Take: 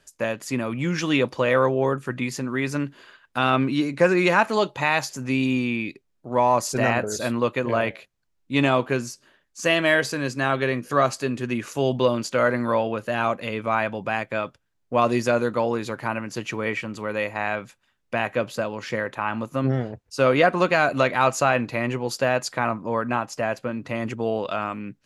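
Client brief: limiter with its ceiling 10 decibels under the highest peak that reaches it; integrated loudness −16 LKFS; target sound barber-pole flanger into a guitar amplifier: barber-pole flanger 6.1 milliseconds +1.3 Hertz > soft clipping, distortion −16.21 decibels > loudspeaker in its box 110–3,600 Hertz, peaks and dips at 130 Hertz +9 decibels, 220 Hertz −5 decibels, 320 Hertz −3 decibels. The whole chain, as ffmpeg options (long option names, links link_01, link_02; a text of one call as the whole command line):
ffmpeg -i in.wav -filter_complex "[0:a]alimiter=limit=-15dB:level=0:latency=1,asplit=2[link_01][link_02];[link_02]adelay=6.1,afreqshift=1.3[link_03];[link_01][link_03]amix=inputs=2:normalize=1,asoftclip=threshold=-22dB,highpass=110,equalizer=frequency=130:width_type=q:width=4:gain=9,equalizer=frequency=220:width_type=q:width=4:gain=-5,equalizer=frequency=320:width_type=q:width=4:gain=-3,lowpass=frequency=3600:width=0.5412,lowpass=frequency=3600:width=1.3066,volume=16.5dB" out.wav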